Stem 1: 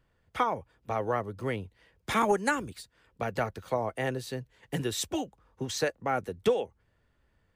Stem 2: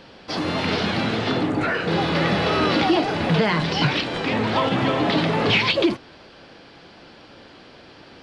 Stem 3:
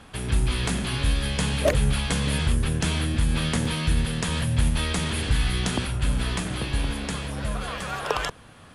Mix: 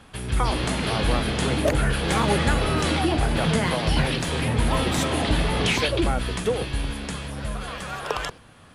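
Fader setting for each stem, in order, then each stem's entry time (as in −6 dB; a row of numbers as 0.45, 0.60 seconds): +0.5, −5.5, −1.5 decibels; 0.00, 0.15, 0.00 seconds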